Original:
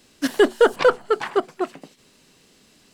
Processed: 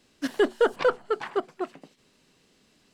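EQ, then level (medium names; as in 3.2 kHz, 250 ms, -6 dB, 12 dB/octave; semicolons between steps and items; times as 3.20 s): treble shelf 7.1 kHz -7.5 dB; -6.5 dB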